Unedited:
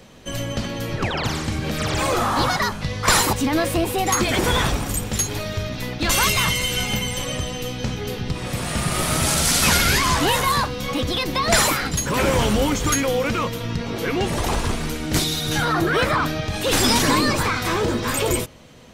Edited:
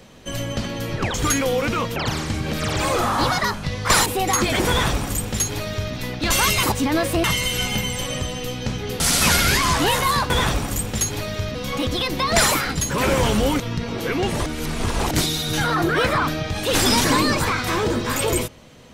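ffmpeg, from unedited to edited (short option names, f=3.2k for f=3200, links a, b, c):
-filter_complex "[0:a]asplit=12[a][b][c][d][e][f][g][h][i][j][k][l];[a]atrim=end=1.142[m];[b]atrim=start=12.758:end=13.582[n];[c]atrim=start=1.138:end=3.242[o];[d]atrim=start=3.848:end=6.422[p];[e]atrim=start=3.238:end=3.852[q];[f]atrim=start=6.418:end=8.182[r];[g]atrim=start=9.408:end=10.712[s];[h]atrim=start=4.478:end=5.732[t];[i]atrim=start=10.708:end=12.762[u];[j]atrim=start=13.578:end=14.442[v];[k]atrim=start=14.438:end=15.092,asetpts=PTS-STARTPTS,areverse[w];[l]atrim=start=15.088[x];[m][n]acrossfade=d=0.004:c1=hsin:c2=hsin[y];[y][o]acrossfade=d=0.004:c1=hsin:c2=hsin[z];[z][p]acrossfade=d=0.004:c1=hsin:c2=hsin[aa];[aa][q]acrossfade=d=0.004:c1=hsin:c2=hsin[ab];[ab][r]acrossfade=d=0.004:c1=hsin:c2=hsin[ac];[ac][s]acrossfade=d=0.004:c1=hsin:c2=hsin[ad];[ad][t]acrossfade=d=0.004:c1=hsin:c2=hsin[ae];[ae][u]acrossfade=d=0.004:c1=hsin:c2=hsin[af];[af][v]acrossfade=d=0.004:c1=hsin:c2=hsin[ag];[ag][w]acrossfade=d=0.004:c1=hsin:c2=hsin[ah];[ah][x]acrossfade=d=0.004:c1=hsin:c2=hsin"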